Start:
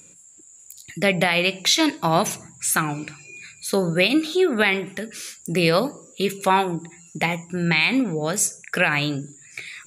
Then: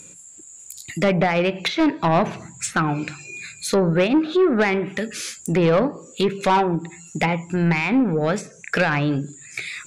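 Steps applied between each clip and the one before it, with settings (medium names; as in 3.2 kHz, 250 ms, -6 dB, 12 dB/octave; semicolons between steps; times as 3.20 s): low-pass that closes with the level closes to 1.5 kHz, closed at -17.5 dBFS; saturation -17 dBFS, distortion -13 dB; trim +5.5 dB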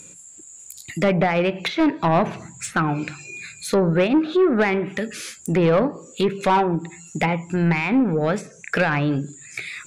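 dynamic bell 5.9 kHz, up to -5 dB, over -39 dBFS, Q 0.76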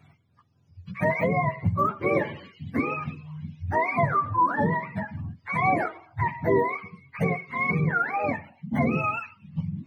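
spectrum inverted on a logarithmic axis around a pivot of 610 Hz; trim -3.5 dB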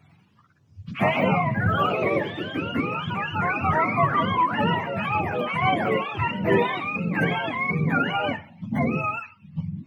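ever faster or slower copies 97 ms, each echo +2 st, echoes 3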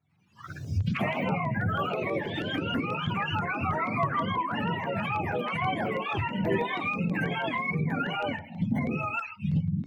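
recorder AGC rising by 58 dB/s; spectral noise reduction 15 dB; LFO notch saw down 6.2 Hz 260–3600 Hz; trim -6 dB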